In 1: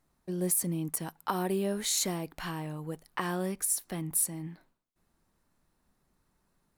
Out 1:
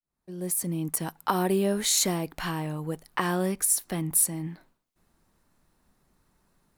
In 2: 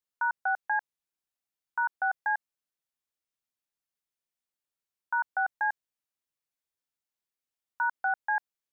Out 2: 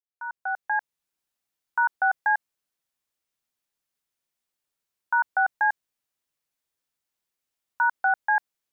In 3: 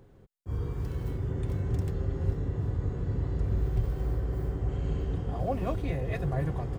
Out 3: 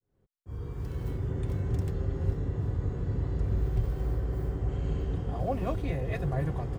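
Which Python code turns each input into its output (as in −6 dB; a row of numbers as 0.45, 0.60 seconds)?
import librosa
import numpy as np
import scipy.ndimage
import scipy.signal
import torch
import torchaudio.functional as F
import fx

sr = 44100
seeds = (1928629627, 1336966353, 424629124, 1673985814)

y = fx.fade_in_head(x, sr, length_s=1.08)
y = y * 10.0 ** (-30 / 20.0) / np.sqrt(np.mean(np.square(y)))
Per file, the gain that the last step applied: +5.5, +6.0, 0.0 decibels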